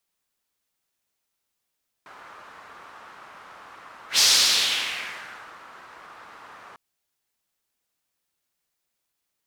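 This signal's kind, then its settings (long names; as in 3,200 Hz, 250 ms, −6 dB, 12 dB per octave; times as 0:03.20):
pass-by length 4.70 s, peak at 0:02.13, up 0.11 s, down 1.51 s, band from 1,200 Hz, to 5,000 Hz, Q 2.1, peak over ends 29 dB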